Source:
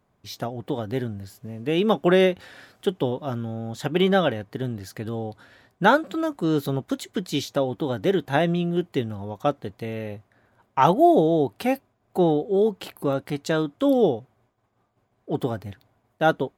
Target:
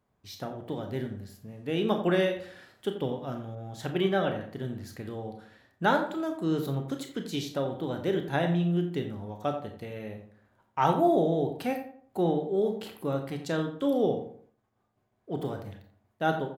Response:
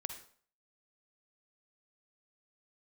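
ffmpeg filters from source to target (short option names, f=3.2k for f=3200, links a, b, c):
-filter_complex "[0:a]asplit=2[a][b];[b]adelay=87,lowpass=f=1.6k:p=1,volume=-9dB,asplit=2[c][d];[d]adelay=87,lowpass=f=1.6k:p=1,volume=0.39,asplit=2[e][f];[f]adelay=87,lowpass=f=1.6k:p=1,volume=0.39,asplit=2[g][h];[h]adelay=87,lowpass=f=1.6k:p=1,volume=0.39[i];[a][c][e][g][i]amix=inputs=5:normalize=0[j];[1:a]atrim=start_sample=2205,asetrate=79380,aresample=44100[k];[j][k]afir=irnorm=-1:irlink=0,asettb=1/sr,asplit=3[l][m][n];[l]atrim=end=3.554[o];[m]atrim=start=3.55:end=4.41,asetpts=PTS-STARTPTS,afade=t=in:d=0.004:c=qsin,afade=t=out:st=0.856:d=0.004:c=qsin,adynamicequalizer=threshold=0.00562:dfrequency=2200:dqfactor=0.7:tfrequency=2200:tqfactor=0.7:attack=5:release=100:ratio=0.375:range=3.5:mode=cutabove:tftype=highshelf[p];[n]atrim=start=4.406[q];[o][p]acrossfade=d=0.004:c1=hsin:c2=qsin[r];[r][q]acrossfade=d=0.004:c1=qsin:c2=hsin"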